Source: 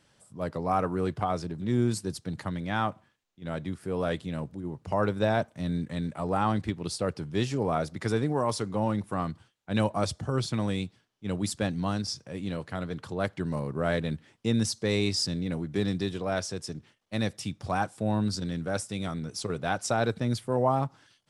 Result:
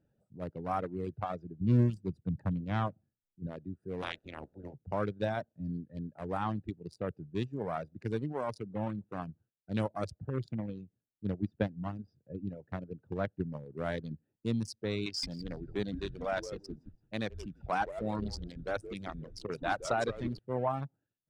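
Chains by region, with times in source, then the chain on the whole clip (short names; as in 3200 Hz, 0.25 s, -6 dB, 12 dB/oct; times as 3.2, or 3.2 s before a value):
1.61–3.47 low shelf 270 Hz +11 dB + Doppler distortion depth 0.3 ms
4.01–4.73 spectral limiter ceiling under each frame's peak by 27 dB + LPF 3900 Hz 6 dB/oct
10.54–13.66 transient shaper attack +7 dB, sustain 0 dB + air absorption 280 m
15.06–20.39 overdrive pedal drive 12 dB, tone 3800 Hz, clips at -12.5 dBFS + frequency-shifting echo 0.169 s, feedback 34%, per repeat -140 Hz, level -6 dB
whole clip: Wiener smoothing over 41 samples; reverb removal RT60 1.4 s; high shelf 5700 Hz -4.5 dB; gain -5 dB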